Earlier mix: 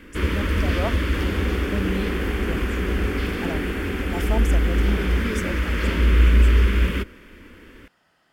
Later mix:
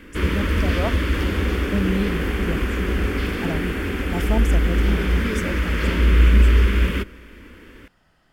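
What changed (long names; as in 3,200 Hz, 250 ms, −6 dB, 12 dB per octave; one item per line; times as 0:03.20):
speech: remove high-pass filter 340 Hz 6 dB per octave
reverb: on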